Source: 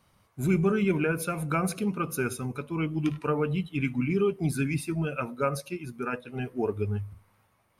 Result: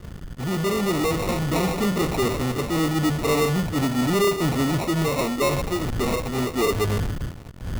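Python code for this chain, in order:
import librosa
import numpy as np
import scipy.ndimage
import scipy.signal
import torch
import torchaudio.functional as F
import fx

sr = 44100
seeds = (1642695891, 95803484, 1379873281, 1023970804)

p1 = fx.fade_in_head(x, sr, length_s=1.82)
p2 = fx.dmg_wind(p1, sr, seeds[0], corner_hz=100.0, level_db=-42.0)
p3 = fx.dynamic_eq(p2, sr, hz=470.0, q=0.74, threshold_db=-40.0, ratio=4.0, max_db=7)
p4 = fx.fuzz(p3, sr, gain_db=47.0, gate_db=-54.0)
p5 = p3 + (p4 * 10.0 ** (-12.0 / 20.0))
p6 = fx.sample_hold(p5, sr, seeds[1], rate_hz=1600.0, jitter_pct=0)
p7 = 10.0 ** (-13.5 / 20.0) * np.tanh(p6 / 10.0 ** (-13.5 / 20.0))
y = p7 * 10.0 ** (-1.0 / 20.0)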